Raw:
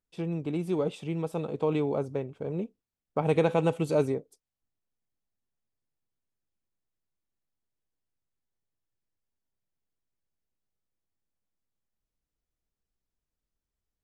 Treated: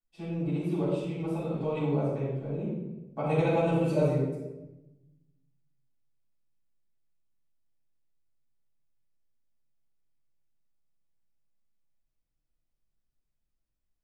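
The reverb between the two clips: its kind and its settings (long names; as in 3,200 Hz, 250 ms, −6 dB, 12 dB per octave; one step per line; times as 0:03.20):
rectangular room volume 450 cubic metres, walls mixed, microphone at 8.3 metres
level −17.5 dB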